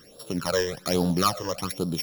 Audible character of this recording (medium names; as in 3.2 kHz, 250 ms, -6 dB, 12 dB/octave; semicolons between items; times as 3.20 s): a buzz of ramps at a fixed pitch in blocks of 8 samples; phasing stages 12, 1.2 Hz, lowest notch 220–2100 Hz; Vorbis